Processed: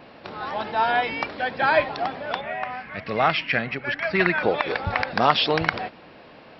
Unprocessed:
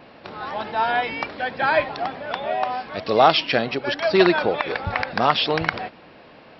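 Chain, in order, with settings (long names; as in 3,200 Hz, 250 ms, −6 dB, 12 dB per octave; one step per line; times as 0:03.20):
0:02.41–0:04.43: drawn EQ curve 180 Hz 0 dB, 340 Hz −9 dB, 940 Hz −7 dB, 2,100 Hz +5 dB, 3,600 Hz −11 dB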